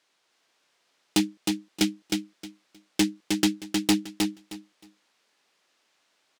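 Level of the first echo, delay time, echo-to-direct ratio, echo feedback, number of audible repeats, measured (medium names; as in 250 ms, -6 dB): -4.0 dB, 312 ms, -4.0 dB, 20%, 3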